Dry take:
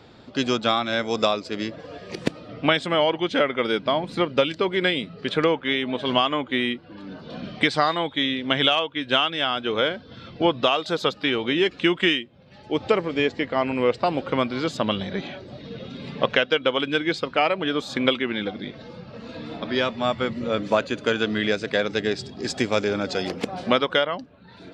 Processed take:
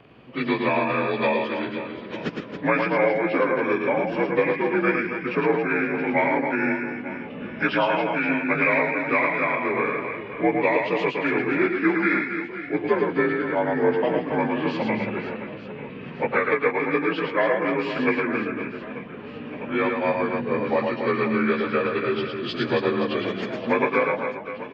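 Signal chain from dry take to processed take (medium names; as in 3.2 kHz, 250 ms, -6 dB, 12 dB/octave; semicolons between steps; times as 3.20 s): frequency axis rescaled in octaves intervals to 86%; reverse bouncing-ball echo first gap 110 ms, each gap 1.5×, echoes 5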